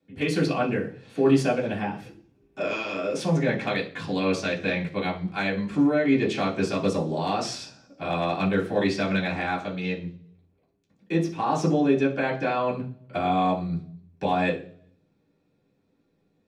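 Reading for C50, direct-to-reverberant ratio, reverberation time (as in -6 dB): 11.0 dB, -7.5 dB, 0.45 s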